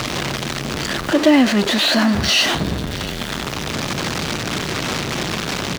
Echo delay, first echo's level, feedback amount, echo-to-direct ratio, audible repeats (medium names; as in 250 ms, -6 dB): 685 ms, -19.5 dB, no regular repeats, -19.5 dB, 1